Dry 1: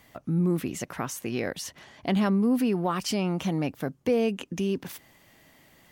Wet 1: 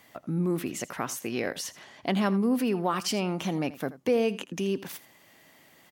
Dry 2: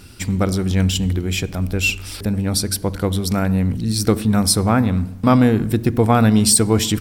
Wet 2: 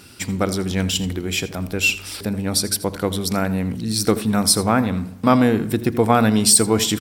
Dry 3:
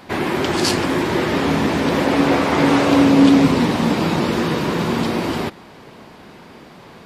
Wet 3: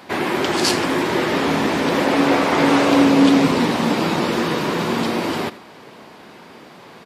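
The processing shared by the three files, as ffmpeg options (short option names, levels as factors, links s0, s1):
-filter_complex "[0:a]highpass=f=240:p=1,asplit=2[s0][s1];[s1]aecho=0:1:82:0.141[s2];[s0][s2]amix=inputs=2:normalize=0,volume=1.12"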